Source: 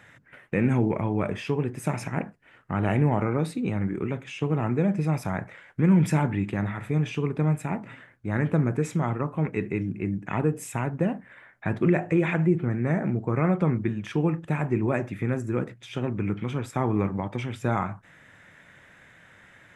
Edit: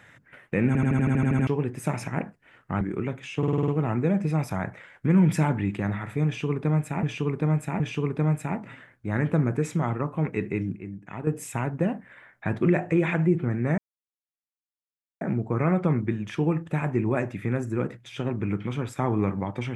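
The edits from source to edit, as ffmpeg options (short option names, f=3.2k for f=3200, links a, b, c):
-filter_complex "[0:a]asplit=23[a][b][c][d][e][f][g][h][i][j][k][l][m][n][o][p][q][r][s][t][u][v][w];[a]atrim=end=0.752[x];[b]atrim=start=0.668:end=0.752[y];[c]atrim=start=0.668:end=0.752[z];[d]atrim=start=0.668:end=0.752[aa];[e]atrim=start=0.668:end=0.752[ab];[f]atrim=start=0.668:end=0.752[ac];[g]atrim=start=0.668:end=0.752[ad];[h]atrim=start=0.668:end=0.752[ae];[i]atrim=start=0.668:end=0.752[af];[j]atrim=start=0.668:end=0.752[ag];[k]atrim=start=1.468:end=2.812[ah];[l]atrim=start=3.848:end=4.472[ai];[m]atrim=start=4.418:end=4.472[aj];[n]atrim=start=4.418:end=4.472[ak];[o]atrim=start=4.418:end=4.472[al];[p]atrim=start=4.418:end=4.472[am];[q]atrim=start=4.418:end=4.472[an];[r]atrim=start=4.418:end=7.772[ao];[s]atrim=start=6.998:end=7.772[ap];[t]atrim=start=6.998:end=9.962[aq];[u]atrim=start=9.958:end=10.472,asetpts=PTS-STARTPTS,volume=-9dB[ar];[v]atrim=start=10.468:end=12.98,asetpts=PTS-STARTPTS,afade=t=out:st=2.508:d=0.004:c=hsin,apad=pad_dur=1.43[as];[w]atrim=start=12.98,asetpts=PTS-STARTPTS,afade=t=in:d=0.004:c=hsin[at];[x][y]acrossfade=d=0.004:c1=hsin:c2=hsin[au];[au][z]acrossfade=d=0.004:c1=hsin:c2=hsin[av];[av][aa]acrossfade=d=0.004:c1=hsin:c2=hsin[aw];[aw][ab]acrossfade=d=0.004:c1=hsin:c2=hsin[ax];[ax][ac]acrossfade=d=0.004:c1=hsin:c2=hsin[ay];[ay][ad]acrossfade=d=0.004:c1=hsin:c2=hsin[az];[az][ae]acrossfade=d=0.004:c1=hsin:c2=hsin[ba];[ba][af]acrossfade=d=0.004:c1=hsin:c2=hsin[bb];[bb][ag]acrossfade=d=0.004:c1=hsin:c2=hsin[bc];[bc][ah]acrossfade=d=0.004:c1=hsin:c2=hsin[bd];[bd][ai]acrossfade=d=0.004:c1=hsin:c2=hsin[be];[be][aj]acrossfade=d=0.004:c1=hsin:c2=hsin[bf];[bf][ak]acrossfade=d=0.004:c1=hsin:c2=hsin[bg];[bg][al]acrossfade=d=0.004:c1=hsin:c2=hsin[bh];[bh][am]acrossfade=d=0.004:c1=hsin:c2=hsin[bi];[bi][an]acrossfade=d=0.004:c1=hsin:c2=hsin[bj];[bj][ao]acrossfade=d=0.004:c1=hsin:c2=hsin[bk];[bk][ap]acrossfade=d=0.004:c1=hsin:c2=hsin[bl];[bl][aq]acrossfade=d=0.004:c1=hsin:c2=hsin[bm];[bm][ar]acrossfade=d=0.004:c1=hsin:c2=hsin[bn];[as][at]concat=n=2:v=0:a=1[bo];[bn][bo]acrossfade=d=0.004:c1=hsin:c2=hsin"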